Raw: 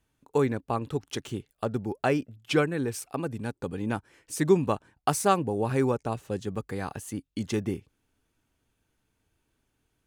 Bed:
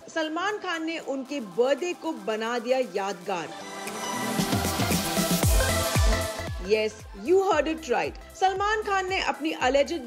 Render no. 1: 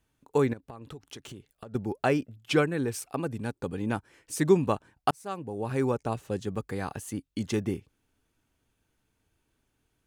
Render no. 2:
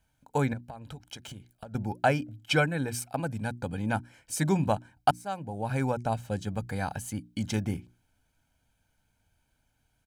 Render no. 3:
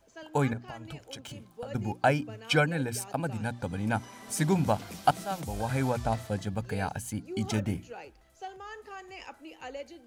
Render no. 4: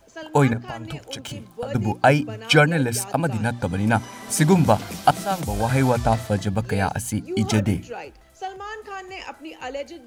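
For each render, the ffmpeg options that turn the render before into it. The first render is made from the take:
-filter_complex "[0:a]asettb=1/sr,asplit=3[s0][s1][s2];[s0]atrim=end=0.534[s3];[s1]atrim=start=0.53:end=1.75,asetpts=PTS-STARTPTS,afade=t=in:d=0.004:c=qsin,afade=t=out:st=1.216:d=0.004:c=qsin,acompressor=threshold=0.0112:ratio=12:attack=3.2:release=140:knee=1:detection=peak[s4];[s2]atrim=start=1.746[s5];[s3][s4]acrossfade=d=0.004:c1=hsin:c2=qsin[s6];[s6][s5]acrossfade=d=0.004:c1=qsin:c2=hsin,asplit=2[s7][s8];[s7]atrim=end=5.11,asetpts=PTS-STARTPTS,afade=t=out:st=5.106:d=0.004:c=hsin[s9];[s8]atrim=start=5.11,asetpts=PTS-STARTPTS,afade=t=in:d=0.92[s10];[s9][s10]concat=n=2:v=0:a=1"
-af "bandreject=f=60:t=h:w=6,bandreject=f=120:t=h:w=6,bandreject=f=180:t=h:w=6,bandreject=f=240:t=h:w=6,bandreject=f=300:t=h:w=6,bandreject=f=360:t=h:w=6,aecho=1:1:1.3:0.68"
-filter_complex "[1:a]volume=0.119[s0];[0:a][s0]amix=inputs=2:normalize=0"
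-af "volume=2.99,alimiter=limit=0.708:level=0:latency=1"

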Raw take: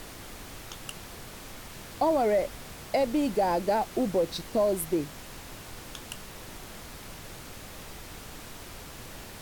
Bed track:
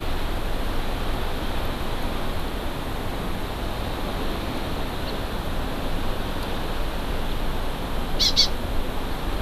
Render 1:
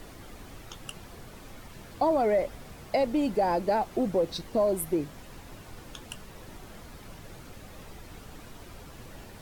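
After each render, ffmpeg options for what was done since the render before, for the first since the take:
-af "afftdn=nr=8:nf=-45"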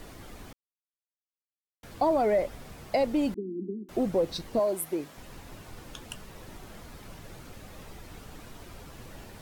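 -filter_complex "[0:a]asettb=1/sr,asplit=3[s0][s1][s2];[s0]atrim=end=3.344[s3];[s1]atrim=start=3.34:end=3.89,asetpts=PTS-STARTPTS,afade=t=in:d=0.004:c=qsin,afade=t=out:st=0.546:d=0.004:c=qsin,asuperpass=centerf=270:order=20:qfactor=1.2[s4];[s2]atrim=start=3.886[s5];[s3][s4]acrossfade=d=0.004:c1=hsin:c2=qsin[s6];[s6][s5]acrossfade=d=0.004:c1=qsin:c2=hsin,asettb=1/sr,asplit=3[s7][s8][s9];[s7]atrim=end=4.594[s10];[s8]atrim=start=4.59:end=5.18,asetpts=PTS-STARTPTS,afade=t=in:d=0.004:c=qsin,afade=t=out:st=0.586:d=0.004:c=qsin,highpass=f=400:p=1[s11];[s9]atrim=start=5.176[s12];[s10][s11]acrossfade=d=0.004:c1=hsin:c2=qsin[s13];[s13][s12]acrossfade=d=0.004:c1=qsin:c2=hsin,asplit=3[s14][s15][s16];[s14]atrim=end=0.53,asetpts=PTS-STARTPTS,afade=t=out:st=0.526:d=0.004:c=hsin[s17];[s15]atrim=start=0.53:end=1.83,asetpts=PTS-STARTPTS,volume=0[s18];[s16]atrim=start=1.83,asetpts=PTS-STARTPTS,afade=t=in:d=0.004:c=hsin[s19];[s17][s18][s19]concat=n=3:v=0:a=1"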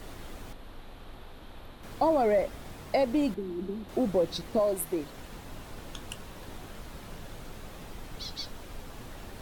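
-filter_complex "[1:a]volume=0.0944[s0];[0:a][s0]amix=inputs=2:normalize=0"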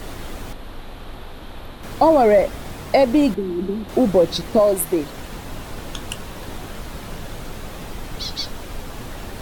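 -af "volume=3.55"

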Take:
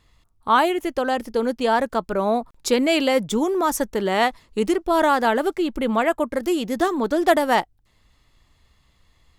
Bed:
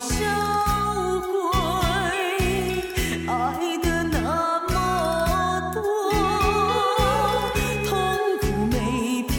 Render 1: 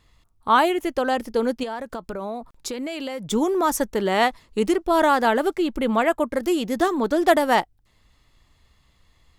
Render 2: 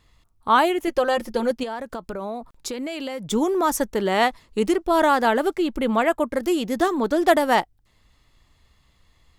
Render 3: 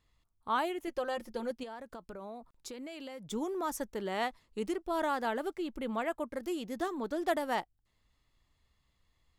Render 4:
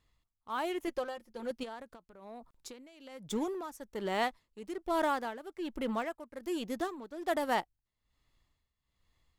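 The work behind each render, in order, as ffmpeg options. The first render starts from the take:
-filter_complex "[0:a]asettb=1/sr,asplit=3[s0][s1][s2];[s0]atrim=end=1.634[s3];[s1]atrim=start=1.63:end=3.28,asetpts=PTS-STARTPTS,afade=t=in:d=0.004:c=qsin,afade=t=out:st=1.646:d=0.004:c=qsin,acompressor=threshold=0.0501:ratio=10:attack=3.2:release=140:knee=1:detection=peak[s4];[s2]atrim=start=3.276[s5];[s3][s4]acrossfade=d=0.004:c1=hsin:c2=qsin[s6];[s6][s5]acrossfade=d=0.004:c1=qsin:c2=hsin"
-filter_complex "[0:a]asettb=1/sr,asplit=3[s0][s1][s2];[s0]atrim=end=0.874[s3];[s1]atrim=start=0.87:end=1.51,asetpts=PTS-STARTPTS,afade=t=in:d=0.004:c=qsin,afade=t=out:st=0.636:d=0.004:c=qsin,aecho=1:1:5.6:0.65,atrim=end_sample=28224[s4];[s2]atrim=start=1.506[s5];[s3][s4]acrossfade=d=0.004:c1=hsin:c2=qsin[s6];[s6][s5]acrossfade=d=0.004:c1=qsin:c2=hsin"
-af "volume=0.2"
-filter_complex "[0:a]asplit=2[s0][s1];[s1]acrusher=bits=5:mix=0:aa=0.5,volume=0.316[s2];[s0][s2]amix=inputs=2:normalize=0,tremolo=f=1.2:d=0.79"

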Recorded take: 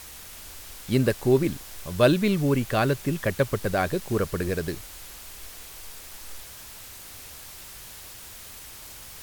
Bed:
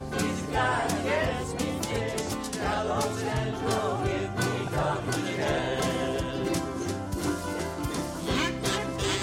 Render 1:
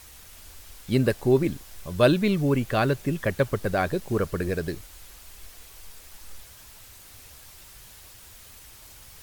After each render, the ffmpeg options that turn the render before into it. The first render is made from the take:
-af "afftdn=nr=6:nf=-43"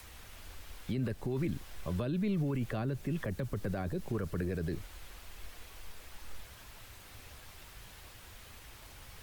-filter_complex "[0:a]acrossover=split=140|310|1000|3700[s0][s1][s2][s3][s4];[s0]acompressor=threshold=0.0224:ratio=4[s5];[s1]acompressor=threshold=0.0316:ratio=4[s6];[s2]acompressor=threshold=0.0141:ratio=4[s7];[s3]acompressor=threshold=0.00631:ratio=4[s8];[s4]acompressor=threshold=0.00126:ratio=4[s9];[s5][s6][s7][s8][s9]amix=inputs=5:normalize=0,alimiter=level_in=1.26:limit=0.0631:level=0:latency=1:release=28,volume=0.794"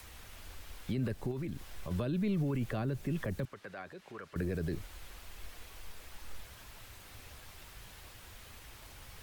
-filter_complex "[0:a]asettb=1/sr,asplit=3[s0][s1][s2];[s0]atrim=end=1.314[s3];[s1]atrim=start=1.31:end=1.91,asetpts=PTS-STARTPTS,afade=t=in:d=0.004:c=qsin,afade=t=out:st=0.596:d=0.004:c=qsin,acompressor=threshold=0.0158:ratio=3:attack=3.2:release=140:knee=1:detection=peak[s4];[s2]atrim=start=1.906[s5];[s3][s4]acrossfade=d=0.004:c1=hsin:c2=qsin[s6];[s6][s5]acrossfade=d=0.004:c1=qsin:c2=hsin,asettb=1/sr,asplit=3[s7][s8][s9];[s7]atrim=end=3.454[s10];[s8]atrim=start=3.45:end=4.36,asetpts=PTS-STARTPTS,afade=t=in:d=0.004:c=qsin,afade=t=out:st=0.906:d=0.004:c=qsin,bandpass=f=1900:t=q:w=0.72[s11];[s9]atrim=start=4.356[s12];[s10][s11]acrossfade=d=0.004:c1=hsin:c2=qsin[s13];[s13][s12]acrossfade=d=0.004:c1=qsin:c2=hsin"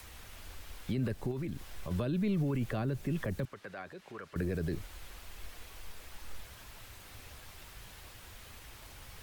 -af "volume=1.12"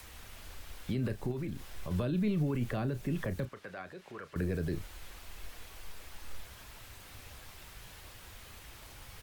-filter_complex "[0:a]asplit=2[s0][s1];[s1]adelay=33,volume=0.251[s2];[s0][s2]amix=inputs=2:normalize=0"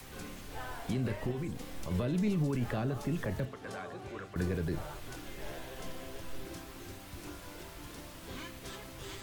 -filter_complex "[1:a]volume=0.126[s0];[0:a][s0]amix=inputs=2:normalize=0"

